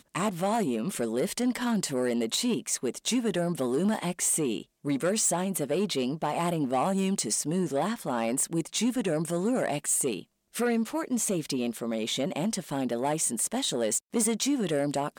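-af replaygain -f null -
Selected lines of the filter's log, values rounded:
track_gain = +10.6 dB
track_peak = 0.084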